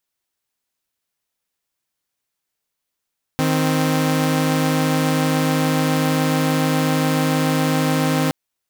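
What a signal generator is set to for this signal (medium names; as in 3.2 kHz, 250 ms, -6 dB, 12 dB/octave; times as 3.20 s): chord D#3/C4 saw, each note -16.5 dBFS 4.92 s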